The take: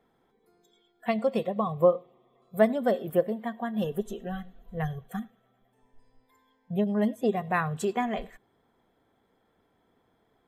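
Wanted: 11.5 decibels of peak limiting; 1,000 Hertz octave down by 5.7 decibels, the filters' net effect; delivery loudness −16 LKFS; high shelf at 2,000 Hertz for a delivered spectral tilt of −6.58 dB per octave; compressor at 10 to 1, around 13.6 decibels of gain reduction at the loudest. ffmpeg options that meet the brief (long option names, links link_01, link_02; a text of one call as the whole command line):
ffmpeg -i in.wav -af "equalizer=frequency=1000:width_type=o:gain=-7,highshelf=frequency=2000:gain=-8,acompressor=threshold=-31dB:ratio=10,volume=25dB,alimiter=limit=-6.5dB:level=0:latency=1" out.wav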